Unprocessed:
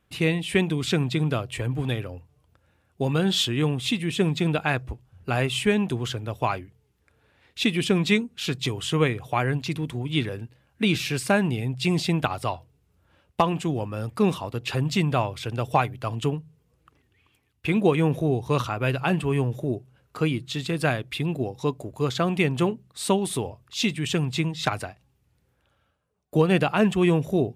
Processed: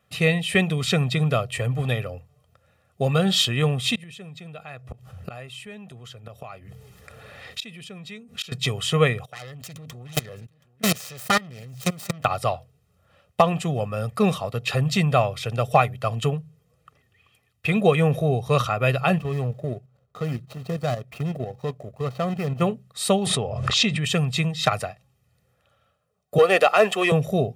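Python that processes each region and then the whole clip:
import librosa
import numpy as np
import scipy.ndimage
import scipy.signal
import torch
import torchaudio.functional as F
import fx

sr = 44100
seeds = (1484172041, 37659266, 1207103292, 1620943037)

y = fx.chain(x, sr, fx.gate_flip(shuts_db=-22.0, range_db=-29),
    fx.env_flatten(amount_pct=50), at=(3.95, 8.52))
y = fx.chain(y, sr, fx.self_delay(depth_ms=0.8),
    fx.echo_single(ms=725, db=-22.5),
    fx.level_steps(step_db=21), at=(9.25, 12.25))
y = fx.chain(y, sr, fx.median_filter(points=25),
    fx.level_steps(step_db=9), at=(19.18, 22.61))
y = fx.chain(y, sr, fx.lowpass(hz=9100.0, slope=24),
    fx.high_shelf(hz=4500.0, db=-11.0),
    fx.pre_swell(db_per_s=37.0), at=(23.26, 24.04))
y = fx.chain(y, sr, fx.highpass(hz=320.0, slope=24),
    fx.leveller(passes=1), at=(26.38, 27.12))
y = scipy.signal.sosfilt(scipy.signal.butter(2, 110.0, 'highpass', fs=sr, output='sos'), y)
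y = y + 0.75 * np.pad(y, (int(1.6 * sr / 1000.0), 0))[:len(y)]
y = y * 10.0 ** (2.0 / 20.0)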